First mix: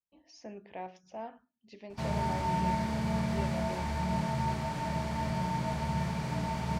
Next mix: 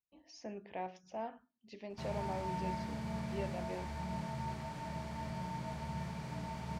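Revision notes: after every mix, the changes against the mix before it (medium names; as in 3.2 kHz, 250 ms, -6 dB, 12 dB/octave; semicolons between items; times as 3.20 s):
background -9.0 dB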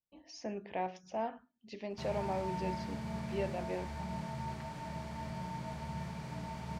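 speech +5.0 dB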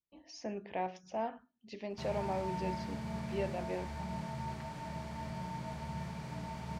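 no change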